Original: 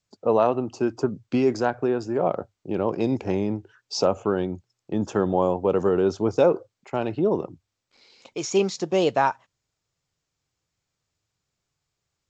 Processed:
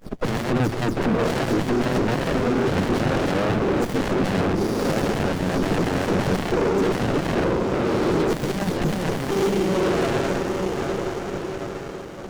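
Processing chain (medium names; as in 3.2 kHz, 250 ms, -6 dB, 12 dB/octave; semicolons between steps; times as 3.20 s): delay that grows with frequency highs early, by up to 111 ms; compression 3:1, threshold -27 dBFS, peak gain reduction 10.5 dB; echo that smears into a reverb 958 ms, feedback 41%, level -9 dB; sine folder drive 20 dB, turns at -15 dBFS; high-pass 130 Hz 24 dB/octave; sliding maximum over 33 samples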